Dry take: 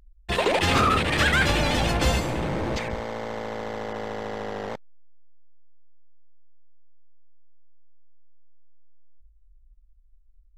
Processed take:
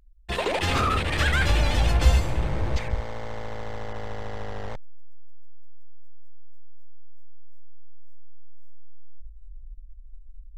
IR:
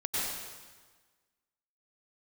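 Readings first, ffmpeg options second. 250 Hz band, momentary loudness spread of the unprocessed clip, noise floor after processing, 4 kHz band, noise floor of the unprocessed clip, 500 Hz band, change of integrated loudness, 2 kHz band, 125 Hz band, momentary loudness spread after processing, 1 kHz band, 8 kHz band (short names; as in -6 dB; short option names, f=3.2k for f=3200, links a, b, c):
-5.5 dB, 13 LU, -43 dBFS, -3.5 dB, -56 dBFS, -4.5 dB, -1.5 dB, -3.5 dB, +3.0 dB, 15 LU, -3.5 dB, -3.5 dB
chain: -af "asubboost=boost=8.5:cutoff=90,volume=-3.5dB"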